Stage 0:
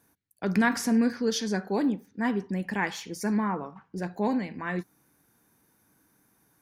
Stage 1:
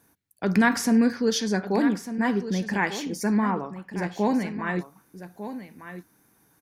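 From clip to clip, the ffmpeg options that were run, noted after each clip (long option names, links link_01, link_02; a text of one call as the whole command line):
ffmpeg -i in.wav -af "aecho=1:1:1199:0.251,volume=3.5dB" out.wav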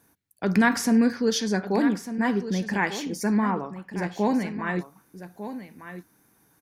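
ffmpeg -i in.wav -af anull out.wav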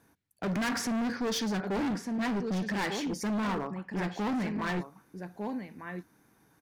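ffmpeg -i in.wav -af "highshelf=frequency=7400:gain=-11.5,volume=28.5dB,asoftclip=hard,volume=-28.5dB" out.wav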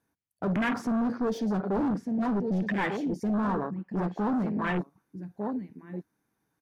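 ffmpeg -i in.wav -af "afwtdn=0.02,volume=3.5dB" out.wav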